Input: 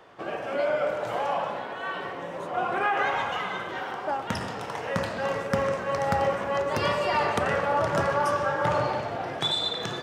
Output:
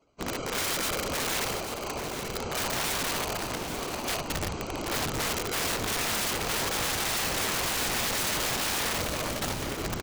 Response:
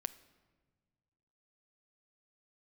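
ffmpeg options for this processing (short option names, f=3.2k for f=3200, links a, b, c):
-af "lowpass=f=1.1k:p=1,afftdn=nr=18:nf=-40,equalizer=f=78:w=0.43:g=11.5,afreqshift=-110,aresample=16000,acrusher=samples=9:mix=1:aa=0.000001,aresample=44100,acontrast=54,afftfilt=real='hypot(re,im)*cos(2*PI*random(0))':imag='hypot(re,im)*sin(2*PI*random(1))':win_size=512:overlap=0.75,aeval=exprs='(mod(16.8*val(0)+1,2)-1)/16.8':c=same,aecho=1:1:837:0.355"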